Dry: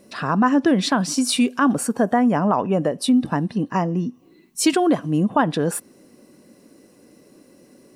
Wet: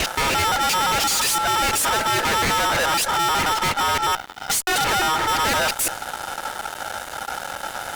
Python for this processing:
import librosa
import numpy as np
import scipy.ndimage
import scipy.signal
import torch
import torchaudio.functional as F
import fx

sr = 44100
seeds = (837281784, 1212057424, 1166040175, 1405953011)

y = fx.local_reverse(x, sr, ms=173.0)
y = y * np.sin(2.0 * np.pi * 1100.0 * np.arange(len(y)) / sr)
y = fx.fuzz(y, sr, gain_db=48.0, gate_db=-55.0)
y = y * 10.0 ** (-6.0 / 20.0)